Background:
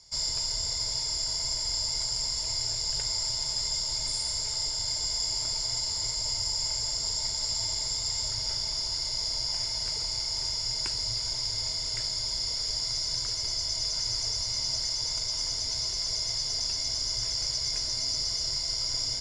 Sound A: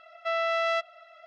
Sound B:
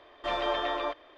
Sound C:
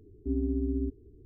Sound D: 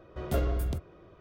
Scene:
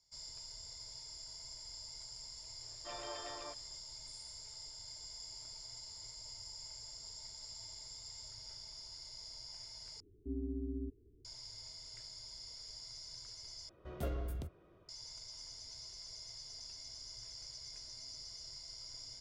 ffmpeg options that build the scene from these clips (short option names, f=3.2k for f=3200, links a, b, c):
-filter_complex "[0:a]volume=-19.5dB,asplit=3[a][b][c];[a]atrim=end=10.004[d];[3:a]atrim=end=1.25,asetpts=PTS-STARTPTS,volume=-10.5dB[e];[b]atrim=start=11.246:end=13.694[f];[4:a]atrim=end=1.2,asetpts=PTS-STARTPTS,volume=-10.5dB[g];[c]atrim=start=14.886[h];[2:a]atrim=end=1.17,asetpts=PTS-STARTPTS,volume=-17dB,afade=t=in:d=0.004:c=hsin,afade=t=out:st=1.166:d=0.004:c=hsin,adelay=2610[i];[d][e]acrossfade=d=0.004:c1=hsin:c2=hsin[j];[j][f]acrossfade=d=0.004:c1=hsin:c2=hsin[k];[k][g]acrossfade=d=0.004:c1=hsin:c2=hsin[l];[l][h]acrossfade=d=0.004:c1=hsin:c2=hsin[m];[m][i]amix=inputs=2:normalize=0"